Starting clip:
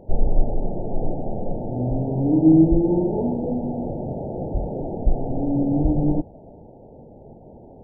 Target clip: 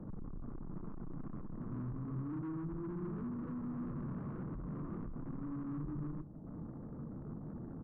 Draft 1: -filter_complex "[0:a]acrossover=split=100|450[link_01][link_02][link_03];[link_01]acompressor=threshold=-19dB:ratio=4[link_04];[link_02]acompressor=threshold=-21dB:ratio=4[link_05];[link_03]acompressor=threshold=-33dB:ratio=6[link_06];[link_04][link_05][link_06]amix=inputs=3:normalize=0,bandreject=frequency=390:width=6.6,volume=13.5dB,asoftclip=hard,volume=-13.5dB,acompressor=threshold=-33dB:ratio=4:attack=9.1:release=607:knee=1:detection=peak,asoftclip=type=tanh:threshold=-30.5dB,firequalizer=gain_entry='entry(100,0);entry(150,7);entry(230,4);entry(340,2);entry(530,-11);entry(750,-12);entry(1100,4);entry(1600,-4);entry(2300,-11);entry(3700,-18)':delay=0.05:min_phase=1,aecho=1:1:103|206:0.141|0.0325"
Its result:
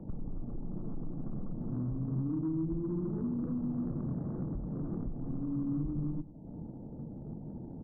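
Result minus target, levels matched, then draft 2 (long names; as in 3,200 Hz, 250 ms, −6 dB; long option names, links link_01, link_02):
echo 61 ms early; soft clipping: distortion −10 dB
-filter_complex "[0:a]acrossover=split=100|450[link_01][link_02][link_03];[link_01]acompressor=threshold=-19dB:ratio=4[link_04];[link_02]acompressor=threshold=-21dB:ratio=4[link_05];[link_03]acompressor=threshold=-33dB:ratio=6[link_06];[link_04][link_05][link_06]amix=inputs=3:normalize=0,bandreject=frequency=390:width=6.6,volume=13.5dB,asoftclip=hard,volume=-13.5dB,acompressor=threshold=-33dB:ratio=4:attack=9.1:release=607:knee=1:detection=peak,asoftclip=type=tanh:threshold=-41.5dB,firequalizer=gain_entry='entry(100,0);entry(150,7);entry(230,4);entry(340,2);entry(530,-11);entry(750,-12);entry(1100,4);entry(1600,-4);entry(2300,-11);entry(3700,-18)':delay=0.05:min_phase=1,aecho=1:1:164|328:0.141|0.0325"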